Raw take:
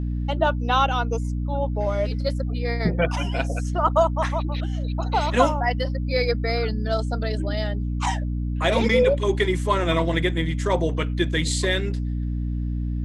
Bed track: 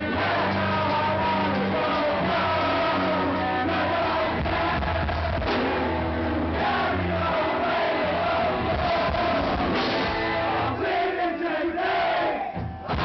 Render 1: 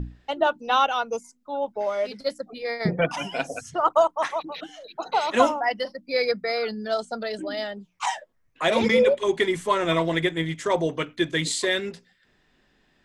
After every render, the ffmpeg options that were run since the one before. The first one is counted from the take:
-af "bandreject=f=60:t=h:w=6,bandreject=f=120:t=h:w=6,bandreject=f=180:t=h:w=6,bandreject=f=240:t=h:w=6,bandreject=f=300:t=h:w=6"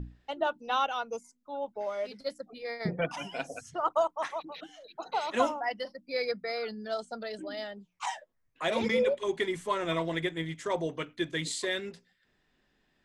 -af "volume=0.398"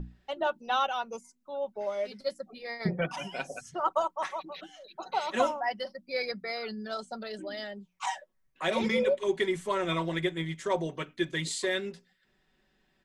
-af "aecho=1:1:5.3:0.47"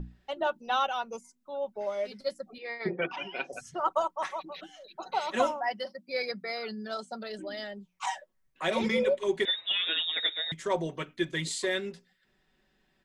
-filter_complex "[0:a]asettb=1/sr,asplit=3[s0][s1][s2];[s0]atrim=end=2.584[s3];[s1]atrim=start=2.58:end=3.53,asetpts=PTS-STARTPTS,afade=t=in:d=0.004:c=qsin,afade=t=out:st=0.946:d=0.004:c=qsin,highpass=290,equalizer=f=360:t=q:w=4:g=9,equalizer=f=630:t=q:w=4:g=-5,equalizer=f=2500:t=q:w=4:g=5,lowpass=f=4000:w=0.5412,lowpass=f=4000:w=1.3066[s4];[s2]atrim=start=3.526[s5];[s3][s4]acrossfade=d=0.004:c1=hsin:c2=qsin[s6];[s6][s5]acrossfade=d=0.004:c1=qsin:c2=hsin,asettb=1/sr,asplit=3[s7][s8][s9];[s7]atrim=end=5.534[s10];[s8]atrim=start=5.53:end=7.3,asetpts=PTS-STARTPTS,afade=t=in:d=0.004:c=qsin,afade=t=out:st=1.766:d=0.004:c=qsin,highpass=88[s11];[s9]atrim=start=7.296[s12];[s10][s11]acrossfade=d=0.004:c1=hsin:c2=qsin[s13];[s13][s12]acrossfade=d=0.004:c1=qsin:c2=hsin,asettb=1/sr,asplit=3[s14][s15][s16];[s14]atrim=end=9.454[s17];[s15]atrim=start=9.45:end=10.52,asetpts=PTS-STARTPTS,afade=t=in:d=0.004:c=qsin,afade=t=out:st=1.066:d=0.004:c=qsin,lowpass=f=3300:t=q:w=0.5098,lowpass=f=3300:t=q:w=0.6013,lowpass=f=3300:t=q:w=0.9,lowpass=f=3300:t=q:w=2.563,afreqshift=-3900[s18];[s16]atrim=start=10.516[s19];[s17][s18]acrossfade=d=0.004:c1=hsin:c2=qsin[s20];[s20][s19]acrossfade=d=0.004:c1=qsin:c2=hsin"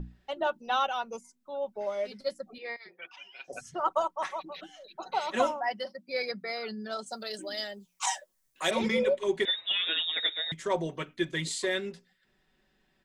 -filter_complex "[0:a]asettb=1/sr,asplit=3[s0][s1][s2];[s0]atrim=end=2.764[s3];[s1]atrim=start=2.76:end=3.48,asetpts=PTS-STARTPTS,afade=t=in:d=0.004:c=qsin,afade=t=out:st=0.716:d=0.004:c=qsin,aderivative[s4];[s2]atrim=start=3.476[s5];[s3][s4]acrossfade=d=0.004:c1=hsin:c2=qsin[s6];[s6][s5]acrossfade=d=0.004:c1=qsin:c2=hsin,asettb=1/sr,asplit=3[s7][s8][s9];[s7]atrim=end=7.064[s10];[s8]atrim=start=7.06:end=8.71,asetpts=PTS-STARTPTS,afade=t=in:d=0.004:c=qsin,afade=t=out:st=1.646:d=0.004:c=qsin,bass=f=250:g=-6,treble=f=4000:g=14[s11];[s9]atrim=start=8.706[s12];[s10][s11]acrossfade=d=0.004:c1=hsin:c2=qsin[s13];[s13][s12]acrossfade=d=0.004:c1=qsin:c2=hsin"

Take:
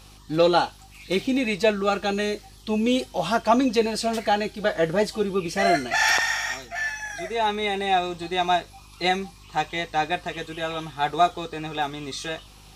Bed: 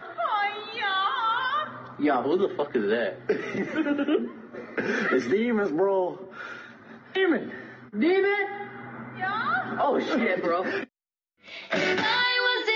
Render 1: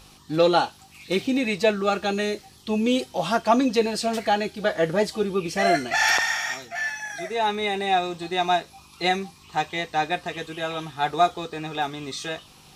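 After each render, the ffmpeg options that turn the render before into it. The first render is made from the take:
-af "bandreject=f=50:t=h:w=4,bandreject=f=100:t=h:w=4"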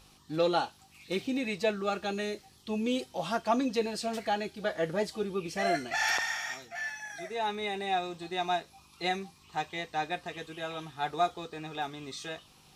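-af "volume=0.376"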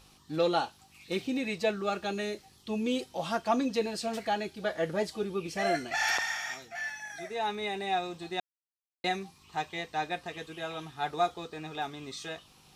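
-filter_complex "[0:a]asplit=3[s0][s1][s2];[s0]atrim=end=8.4,asetpts=PTS-STARTPTS,afade=t=out:st=8.396:d=0.004:c=hsin[s3];[s1]atrim=start=8.4:end=9.04,asetpts=PTS-STARTPTS,volume=0[s4];[s2]atrim=start=9.04,asetpts=PTS-STARTPTS,afade=t=in:d=0.004:c=hsin[s5];[s3][s4][s5]concat=n=3:v=0:a=1"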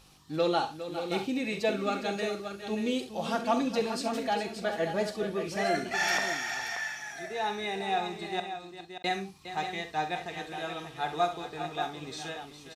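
-filter_complex "[0:a]asplit=2[s0][s1];[s1]adelay=46,volume=0.237[s2];[s0][s2]amix=inputs=2:normalize=0,asplit=2[s3][s4];[s4]aecho=0:1:67|409|580:0.251|0.266|0.355[s5];[s3][s5]amix=inputs=2:normalize=0"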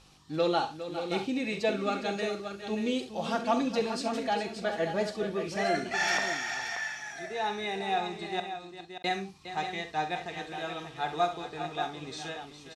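-af "lowpass=8700"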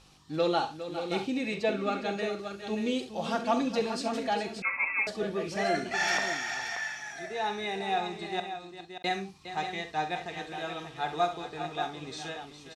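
-filter_complex "[0:a]asettb=1/sr,asplit=3[s0][s1][s2];[s0]atrim=end=1.544[s3];[s1]atrim=start=1.54:end=2.39,asetpts=PTS-STARTPTS,afade=t=in:d=0.004:c=qsin,afade=t=out:st=0.846:d=0.004:c=qsin,bass=f=250:g=0,treble=f=4000:g=-5[s4];[s2]atrim=start=2.386[s5];[s3][s4]acrossfade=d=0.004:c1=hsin:c2=qsin[s6];[s6][s5]acrossfade=d=0.004:c1=qsin:c2=hsin,asettb=1/sr,asplit=3[s7][s8][s9];[s7]atrim=end=4.624[s10];[s8]atrim=start=4.62:end=5.07,asetpts=PTS-STARTPTS,afade=t=in:d=0.004:c=qsin,afade=t=out:st=0.446:d=0.004:c=qsin,lowpass=f=2400:t=q:w=0.5098,lowpass=f=2400:t=q:w=0.6013,lowpass=f=2400:t=q:w=0.9,lowpass=f=2400:t=q:w=2.563,afreqshift=-2800[s11];[s9]atrim=start=5.066[s12];[s10][s11]acrossfade=d=0.004:c1=hsin:c2=qsin[s13];[s13][s12]acrossfade=d=0.004:c1=qsin:c2=hsin"

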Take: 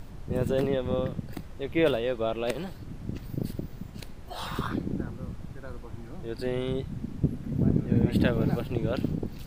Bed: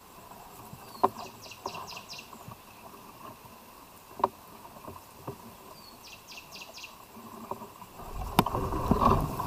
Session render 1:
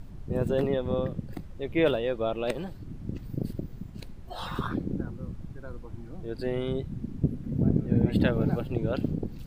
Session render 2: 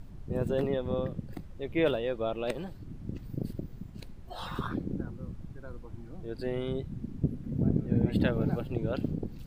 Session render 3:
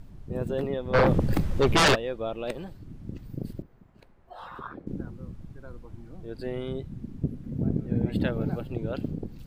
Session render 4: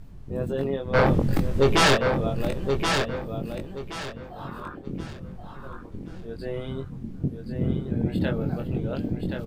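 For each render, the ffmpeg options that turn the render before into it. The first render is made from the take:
-af "afftdn=nr=7:nf=-43"
-af "volume=0.708"
-filter_complex "[0:a]asplit=3[s0][s1][s2];[s0]afade=t=out:st=0.93:d=0.02[s3];[s1]aeval=exprs='0.168*sin(PI/2*5.62*val(0)/0.168)':c=same,afade=t=in:st=0.93:d=0.02,afade=t=out:st=1.94:d=0.02[s4];[s2]afade=t=in:st=1.94:d=0.02[s5];[s3][s4][s5]amix=inputs=3:normalize=0,asettb=1/sr,asplit=3[s6][s7][s8];[s6]atrim=end=3.624[s9];[s7]atrim=start=3.62:end=4.87,asetpts=PTS-STARTPTS,afade=t=in:d=0.004:c=qsin,afade=t=out:st=1.246:d=0.004:c=qsin,acrossover=split=440 2100:gain=0.2 1 0.178[s10][s11][s12];[s10][s11][s12]amix=inputs=3:normalize=0[s13];[s8]atrim=start=4.866[s14];[s9][s13]acrossfade=d=0.004:c1=hsin:c2=qsin[s15];[s15][s14]acrossfade=d=0.004:c1=qsin:c2=hsin"
-filter_complex "[0:a]asplit=2[s0][s1];[s1]adelay=22,volume=0.631[s2];[s0][s2]amix=inputs=2:normalize=0,aecho=1:1:1075|2150|3225|4300:0.531|0.154|0.0446|0.0129"

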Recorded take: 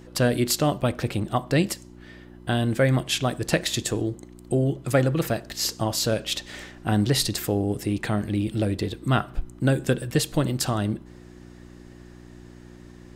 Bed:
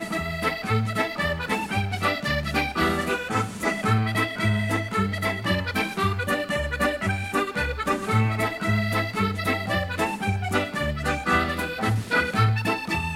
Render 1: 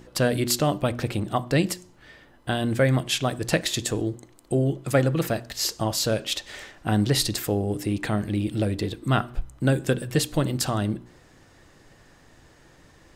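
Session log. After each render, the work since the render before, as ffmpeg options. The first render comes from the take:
-af "bandreject=f=60:t=h:w=4,bandreject=f=120:t=h:w=4,bandreject=f=180:t=h:w=4,bandreject=f=240:t=h:w=4,bandreject=f=300:t=h:w=4,bandreject=f=360:t=h:w=4"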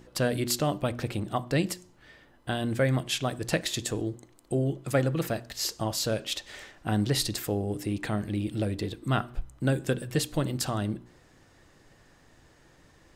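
-af "volume=0.596"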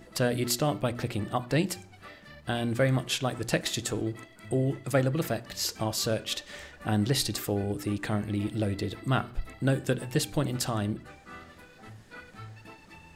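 -filter_complex "[1:a]volume=0.0596[s0];[0:a][s0]amix=inputs=2:normalize=0"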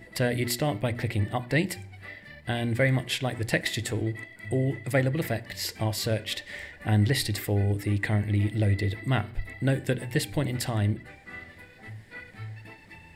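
-af "equalizer=f=100:t=o:w=0.33:g=10,equalizer=f=1250:t=o:w=0.33:g=-9,equalizer=f=2000:t=o:w=0.33:g=12,equalizer=f=6300:t=o:w=0.33:g=-8"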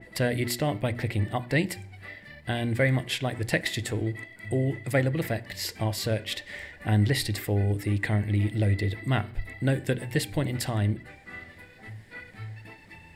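-af "adynamicequalizer=threshold=0.01:dfrequency=3300:dqfactor=0.7:tfrequency=3300:tqfactor=0.7:attack=5:release=100:ratio=0.375:range=1.5:mode=cutabove:tftype=highshelf"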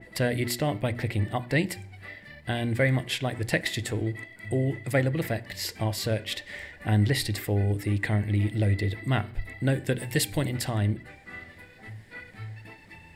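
-filter_complex "[0:a]asettb=1/sr,asplit=3[s0][s1][s2];[s0]atrim=end=9.964[s3];[s1]atrim=start=9.96:end=10.49,asetpts=PTS-STARTPTS,afade=t=in:d=0.004:c=qsin,afade=t=out:st=0.526:d=0.004:c=qsin,highshelf=f=4000:g=8.5[s4];[s2]atrim=start=10.486[s5];[s3][s4]acrossfade=d=0.004:c1=hsin:c2=qsin[s6];[s6][s5]acrossfade=d=0.004:c1=qsin:c2=hsin"

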